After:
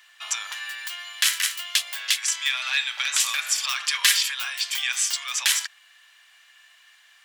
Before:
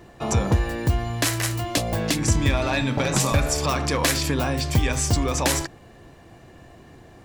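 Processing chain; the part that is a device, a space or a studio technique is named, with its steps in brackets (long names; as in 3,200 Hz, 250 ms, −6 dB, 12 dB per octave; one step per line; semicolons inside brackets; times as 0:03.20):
headphones lying on a table (high-pass filter 1,500 Hz 24 dB per octave; parametric band 3,200 Hz +7 dB 0.41 octaves)
0:03.80–0:04.22: comb filter 5 ms, depth 57%
level +2.5 dB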